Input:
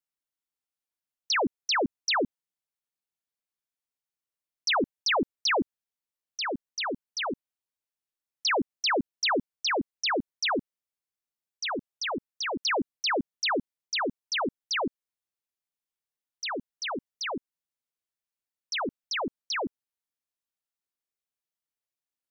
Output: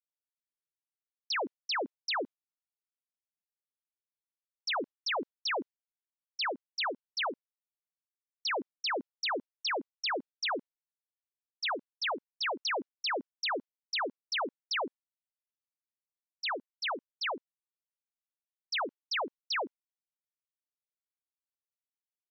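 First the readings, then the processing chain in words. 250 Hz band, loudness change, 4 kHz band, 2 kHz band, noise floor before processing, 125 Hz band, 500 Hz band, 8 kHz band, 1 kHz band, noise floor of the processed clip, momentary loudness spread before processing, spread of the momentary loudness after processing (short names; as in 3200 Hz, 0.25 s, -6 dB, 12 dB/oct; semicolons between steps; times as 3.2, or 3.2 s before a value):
-11.0 dB, -5.0 dB, -4.5 dB, -4.5 dB, under -85 dBFS, under -15 dB, -6.0 dB, n/a, -4.5 dB, under -85 dBFS, 8 LU, 3 LU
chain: BPF 510–5800 Hz; limiter -28 dBFS, peak gain reduction 7 dB; expander -38 dBFS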